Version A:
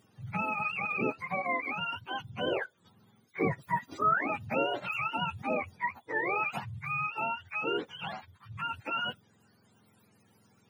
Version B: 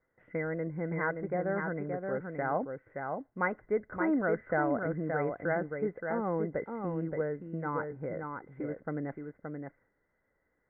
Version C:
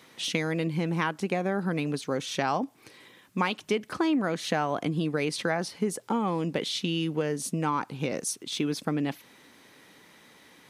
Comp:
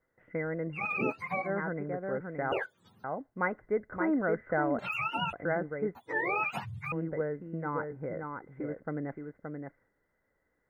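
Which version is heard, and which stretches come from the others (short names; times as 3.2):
B
0.77–1.46 from A, crossfade 0.10 s
2.52–3.04 from A
4.79–5.33 from A
5.95–6.92 from A
not used: C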